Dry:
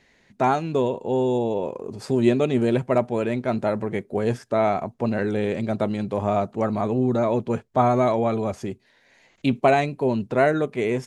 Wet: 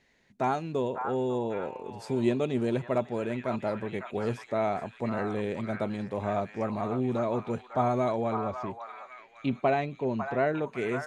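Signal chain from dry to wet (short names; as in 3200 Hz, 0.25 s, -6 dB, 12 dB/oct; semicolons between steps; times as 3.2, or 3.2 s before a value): 8.33–10.68 air absorption 140 m; delay with a stepping band-pass 0.551 s, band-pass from 1200 Hz, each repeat 0.7 oct, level -2 dB; gain -7.5 dB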